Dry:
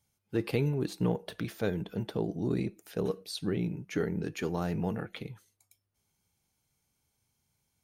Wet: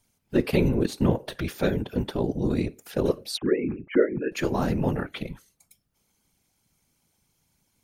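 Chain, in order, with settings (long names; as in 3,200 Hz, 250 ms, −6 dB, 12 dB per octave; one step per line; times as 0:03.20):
0:03.37–0:04.32: three sine waves on the formant tracks
random phases in short frames
level +7 dB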